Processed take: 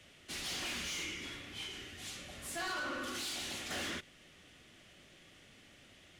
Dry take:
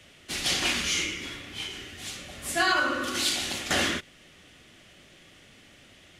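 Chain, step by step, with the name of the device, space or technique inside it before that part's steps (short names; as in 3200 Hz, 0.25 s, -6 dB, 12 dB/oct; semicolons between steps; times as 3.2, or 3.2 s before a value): saturation between pre-emphasis and de-emphasis (high shelf 11000 Hz +11.5 dB; soft clip -30 dBFS, distortion -7 dB; high shelf 11000 Hz -11.5 dB); gain -6 dB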